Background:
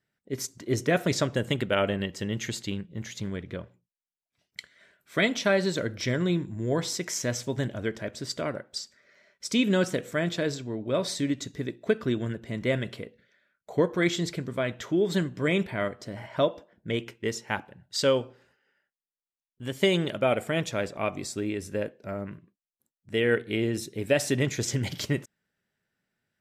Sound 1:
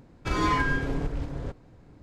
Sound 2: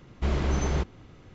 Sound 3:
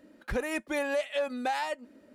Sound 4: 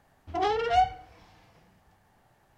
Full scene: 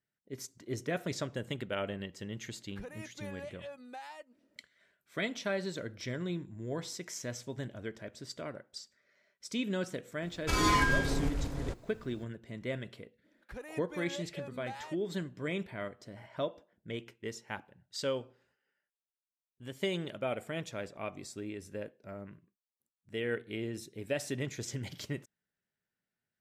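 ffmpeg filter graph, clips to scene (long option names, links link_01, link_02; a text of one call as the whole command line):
ffmpeg -i bed.wav -i cue0.wav -i cue1.wav -i cue2.wav -filter_complex "[3:a]asplit=2[link_01][link_02];[0:a]volume=-10.5dB[link_03];[1:a]aemphasis=mode=production:type=75kf[link_04];[link_01]atrim=end=2.14,asetpts=PTS-STARTPTS,volume=-15.5dB,afade=type=in:duration=0.004:curve=hsin,afade=type=out:start_time=2.136:duration=0.004:curve=hsin,adelay=2480[link_05];[link_04]atrim=end=2.02,asetpts=PTS-STARTPTS,volume=-3dB,afade=type=in:duration=0.004:curve=hsin,afade=type=out:start_time=2.016:duration=0.004:curve=hsin,adelay=10220[link_06];[link_02]atrim=end=2.14,asetpts=PTS-STARTPTS,volume=-14dB,afade=type=in:duration=0.05,afade=type=out:start_time=2.09:duration=0.05,adelay=13210[link_07];[link_03][link_05][link_06][link_07]amix=inputs=4:normalize=0" out.wav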